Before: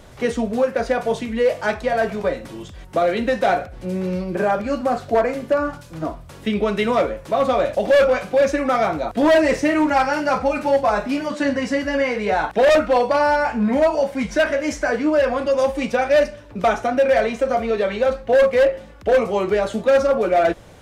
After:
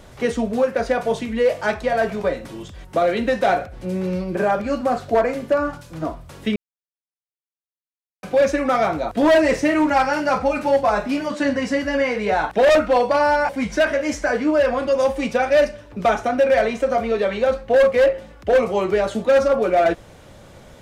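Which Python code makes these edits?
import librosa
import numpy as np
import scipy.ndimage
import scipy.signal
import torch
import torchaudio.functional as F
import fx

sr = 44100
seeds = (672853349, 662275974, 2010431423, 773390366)

y = fx.edit(x, sr, fx.silence(start_s=6.56, length_s=1.67),
    fx.cut(start_s=13.49, length_s=0.59), tone=tone)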